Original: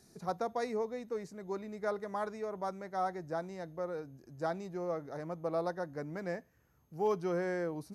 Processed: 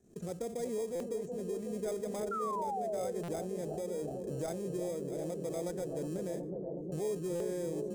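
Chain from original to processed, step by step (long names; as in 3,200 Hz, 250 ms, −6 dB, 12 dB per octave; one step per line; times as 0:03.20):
adaptive Wiener filter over 9 samples
camcorder AGC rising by 26 dB per second
tuned comb filter 77 Hz, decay 0.53 s, harmonics all, mix 30%
downward expander −51 dBFS
rotating-speaker cabinet horn 0.85 Hz
in parallel at −5 dB: decimation without filtering 31×
on the sum: octave-band graphic EQ 125/500/1,000/2,000/4,000/8,000 Hz −4/+5/−10/−6/−5/+11 dB
on a send: bucket-brigade delay 368 ms, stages 2,048, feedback 82%, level −8 dB
on the sum: sound drawn into the spectrogram fall, 0:02.31–0:03.12, 480–1,400 Hz −34 dBFS
buffer that repeats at 0:00.95/0:03.23/0:07.35, samples 256, times 8
envelope flattener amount 50%
level −5 dB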